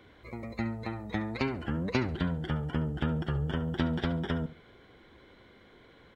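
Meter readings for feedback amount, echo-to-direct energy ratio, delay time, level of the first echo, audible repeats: 25%, −14.5 dB, 70 ms, −15.0 dB, 2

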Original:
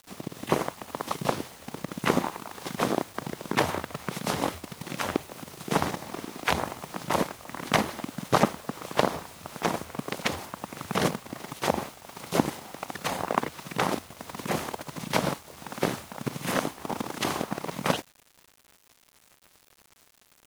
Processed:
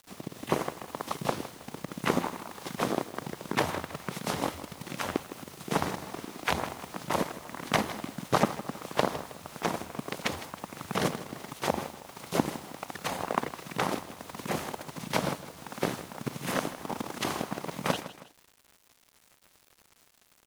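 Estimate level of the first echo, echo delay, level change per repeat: −14.5 dB, 159 ms, −8.0 dB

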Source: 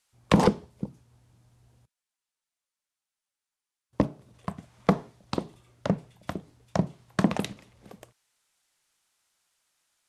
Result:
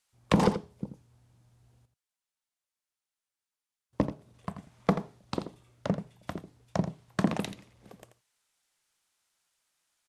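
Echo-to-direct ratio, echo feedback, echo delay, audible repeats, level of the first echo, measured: −11.0 dB, repeats not evenly spaced, 84 ms, 1, −11.0 dB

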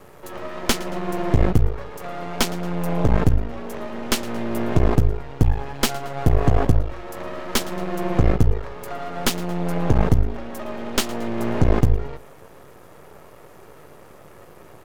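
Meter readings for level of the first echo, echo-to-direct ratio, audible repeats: −19.5 dB, −18.5 dB, 2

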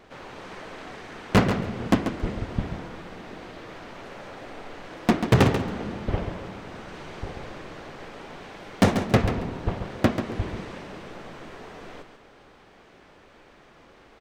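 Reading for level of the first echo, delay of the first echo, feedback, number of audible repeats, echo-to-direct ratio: −8.5 dB, 138 ms, 19%, 2, −8.5 dB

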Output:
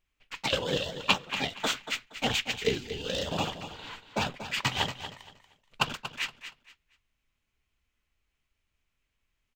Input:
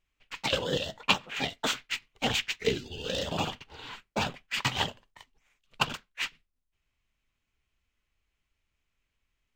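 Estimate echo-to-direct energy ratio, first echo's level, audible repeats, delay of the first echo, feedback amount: −10.5 dB, −11.0 dB, 2, 235 ms, 24%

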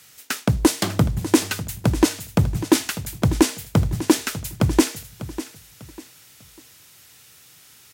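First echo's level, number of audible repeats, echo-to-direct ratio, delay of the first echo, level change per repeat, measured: −14.0 dB, 3, −13.5 dB, 597 ms, −10.0 dB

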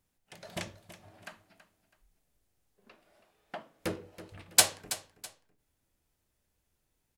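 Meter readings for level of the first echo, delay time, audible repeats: −14.5 dB, 327 ms, 2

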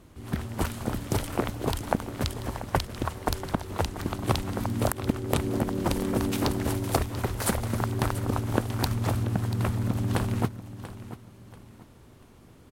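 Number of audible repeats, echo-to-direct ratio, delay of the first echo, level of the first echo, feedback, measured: 3, −13.5 dB, 687 ms, −14.0 dB, 31%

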